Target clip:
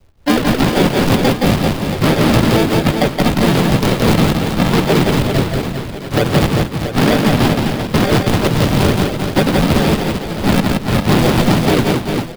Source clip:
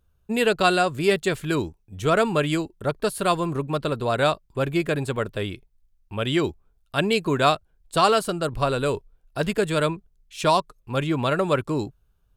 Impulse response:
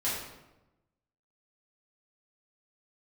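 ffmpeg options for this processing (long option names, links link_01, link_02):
-filter_complex "[0:a]aresample=8000,acrusher=samples=15:mix=1:aa=0.000001:lfo=1:lforange=15:lforate=2.2,aresample=44100,adynamicequalizer=threshold=0.00891:dfrequency=1300:dqfactor=1.7:tfrequency=1300:tqfactor=1.7:attack=5:release=100:ratio=0.375:range=2.5:mode=cutabove:tftype=bell,asplit=4[link_01][link_02][link_03][link_04];[link_02]asetrate=37084,aresample=44100,atempo=1.18921,volume=-17dB[link_05];[link_03]asetrate=55563,aresample=44100,atempo=0.793701,volume=-13dB[link_06];[link_04]asetrate=58866,aresample=44100,atempo=0.749154,volume=-1dB[link_07];[link_01][link_05][link_06][link_07]amix=inputs=4:normalize=0,asoftclip=type=tanh:threshold=-7.5dB,acrusher=bits=3:mode=log:mix=0:aa=0.000001,tremolo=f=3.4:d=0.77,acrossover=split=98|630[link_08][link_09][link_10];[link_08]acompressor=threshold=-38dB:ratio=4[link_11];[link_09]acompressor=threshold=-25dB:ratio=4[link_12];[link_10]acompressor=threshold=-31dB:ratio=4[link_13];[link_11][link_12][link_13]amix=inputs=3:normalize=0,asplit=2[link_14][link_15];[link_15]aecho=0:1:170|391|678.3|1052|1537:0.631|0.398|0.251|0.158|0.1[link_16];[link_14][link_16]amix=inputs=2:normalize=0,alimiter=level_in=16dB:limit=-1dB:release=50:level=0:latency=1,volume=-1dB"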